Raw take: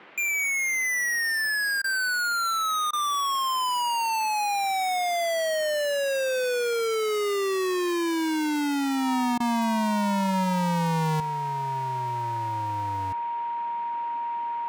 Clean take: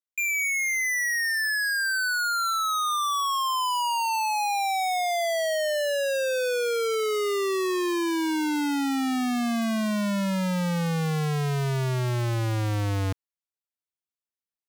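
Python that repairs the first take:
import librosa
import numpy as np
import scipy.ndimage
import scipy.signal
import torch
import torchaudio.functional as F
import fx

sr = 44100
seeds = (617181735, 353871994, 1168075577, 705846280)

y = fx.notch(x, sr, hz=940.0, q=30.0)
y = fx.fix_interpolate(y, sr, at_s=(1.82, 2.91, 9.38), length_ms=20.0)
y = fx.noise_reduce(y, sr, print_start_s=0.0, print_end_s=0.5, reduce_db=30.0)
y = fx.gain(y, sr, db=fx.steps((0.0, 0.0), (11.2, 10.5)))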